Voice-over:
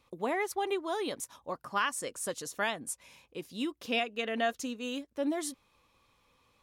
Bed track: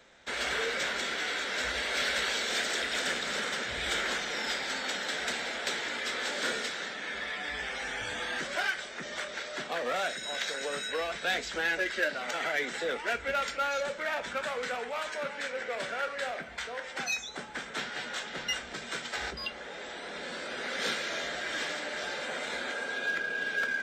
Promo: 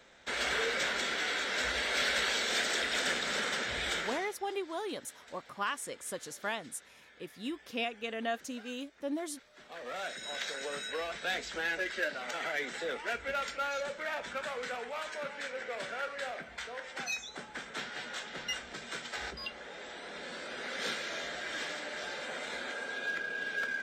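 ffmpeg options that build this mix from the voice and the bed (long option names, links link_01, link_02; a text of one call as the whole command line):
ffmpeg -i stem1.wav -i stem2.wav -filter_complex "[0:a]adelay=3850,volume=-4dB[link_01];[1:a]volume=18.5dB,afade=type=out:start_time=3.77:duration=0.59:silence=0.0749894,afade=type=in:start_time=9.54:duration=0.75:silence=0.112202[link_02];[link_01][link_02]amix=inputs=2:normalize=0" out.wav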